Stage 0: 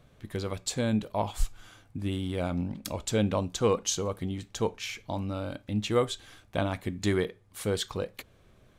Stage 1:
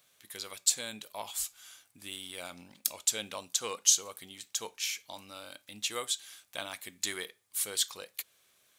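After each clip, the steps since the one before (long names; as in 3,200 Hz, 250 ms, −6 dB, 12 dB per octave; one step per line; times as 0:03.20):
first difference
level +8.5 dB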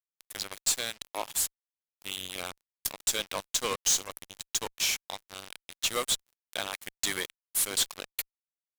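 sub-octave generator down 1 octave, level −6 dB
fuzz pedal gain 34 dB, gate −40 dBFS
level −8.5 dB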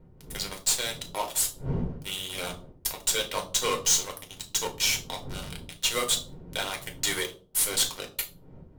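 wind on the microphone 250 Hz −48 dBFS
convolution reverb RT60 0.45 s, pre-delay 6 ms, DRR 2 dB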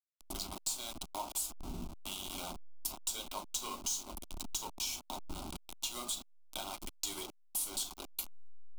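hold until the input has moved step −30.5 dBFS
downward compressor 4 to 1, threshold −33 dBFS, peak gain reduction 12.5 dB
phaser with its sweep stopped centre 480 Hz, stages 6
level −1.5 dB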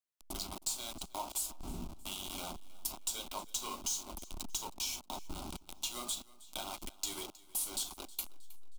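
repeating echo 316 ms, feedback 44%, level −21 dB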